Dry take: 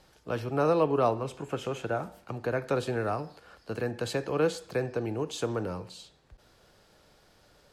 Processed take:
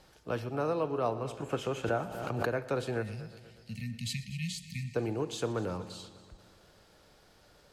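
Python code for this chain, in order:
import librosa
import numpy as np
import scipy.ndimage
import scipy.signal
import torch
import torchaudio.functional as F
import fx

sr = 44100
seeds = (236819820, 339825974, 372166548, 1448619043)

y = fx.spec_erase(x, sr, start_s=3.02, length_s=1.93, low_hz=240.0, high_hz=1800.0)
y = fx.rider(y, sr, range_db=4, speed_s=0.5)
y = fx.echo_heads(y, sr, ms=121, heads='first and second', feedback_pct=54, wet_db=-19.0)
y = fx.pre_swell(y, sr, db_per_s=39.0, at=(1.83, 2.45), fade=0.02)
y = y * 10.0 ** (-3.0 / 20.0)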